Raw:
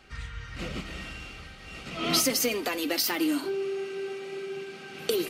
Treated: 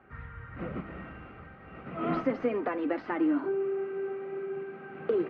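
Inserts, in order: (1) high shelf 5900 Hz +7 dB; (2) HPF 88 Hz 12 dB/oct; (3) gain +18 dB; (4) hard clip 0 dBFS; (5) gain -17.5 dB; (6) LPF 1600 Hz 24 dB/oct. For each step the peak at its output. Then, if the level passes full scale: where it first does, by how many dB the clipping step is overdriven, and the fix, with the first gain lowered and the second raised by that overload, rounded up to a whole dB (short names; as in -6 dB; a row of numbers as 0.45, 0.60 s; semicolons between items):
-9.0, -9.0, +9.0, 0.0, -17.5, -17.0 dBFS; step 3, 9.0 dB; step 3 +9 dB, step 5 -8.5 dB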